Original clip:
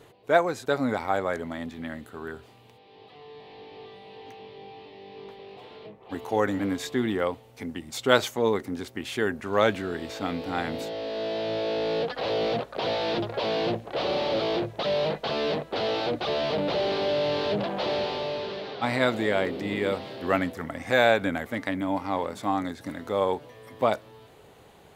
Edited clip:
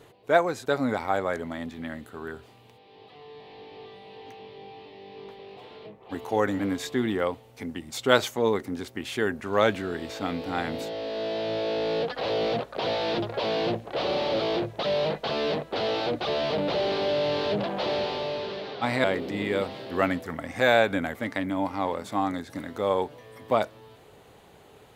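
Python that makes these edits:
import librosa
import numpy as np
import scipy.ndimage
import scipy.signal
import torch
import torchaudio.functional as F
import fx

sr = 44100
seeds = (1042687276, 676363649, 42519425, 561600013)

y = fx.edit(x, sr, fx.cut(start_s=19.04, length_s=0.31), tone=tone)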